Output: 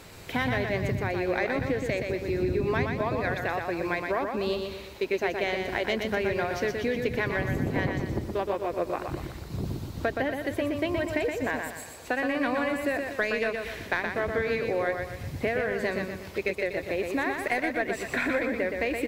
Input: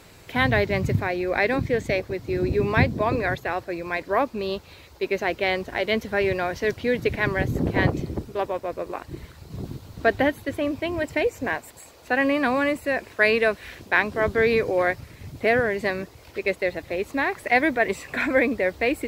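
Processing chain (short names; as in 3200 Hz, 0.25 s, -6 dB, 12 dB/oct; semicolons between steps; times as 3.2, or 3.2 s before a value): tracing distortion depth 0.025 ms; compressor, threshold -27 dBFS, peak gain reduction 13.5 dB; feedback echo 0.121 s, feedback 44%, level -5 dB; gain +1.5 dB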